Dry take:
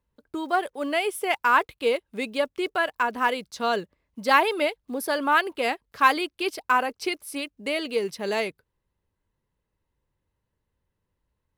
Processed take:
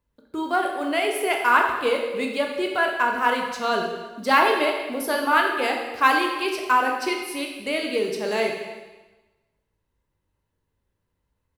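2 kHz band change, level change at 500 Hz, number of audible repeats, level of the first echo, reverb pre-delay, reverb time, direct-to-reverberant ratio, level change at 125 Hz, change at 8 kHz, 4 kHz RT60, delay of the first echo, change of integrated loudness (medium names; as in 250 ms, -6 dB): +3.0 dB, +2.5 dB, 1, -21.5 dB, 6 ms, 1.2 s, 1.0 dB, no reading, +2.5 dB, 1.1 s, 317 ms, +2.5 dB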